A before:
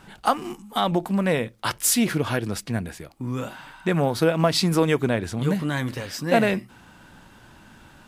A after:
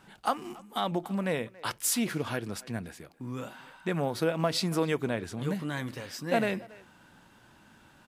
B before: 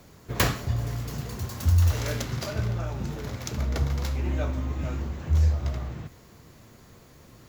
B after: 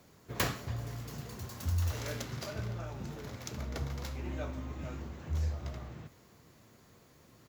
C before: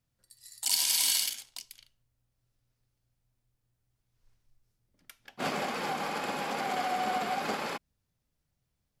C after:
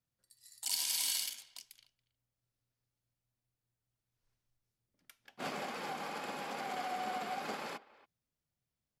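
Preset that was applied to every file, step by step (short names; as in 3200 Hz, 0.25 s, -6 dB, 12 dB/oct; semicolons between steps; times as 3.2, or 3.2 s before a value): low shelf 61 Hz -11.5 dB; speakerphone echo 0.28 s, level -20 dB; gain -7.5 dB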